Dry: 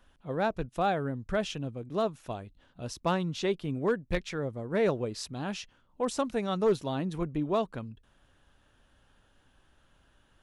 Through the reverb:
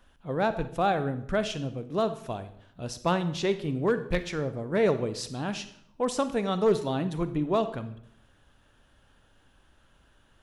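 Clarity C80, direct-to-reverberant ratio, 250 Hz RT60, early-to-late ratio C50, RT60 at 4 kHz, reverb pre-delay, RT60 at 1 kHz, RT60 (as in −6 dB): 16.0 dB, 11.0 dB, 0.85 s, 12.5 dB, 0.55 s, 35 ms, 0.65 s, 0.65 s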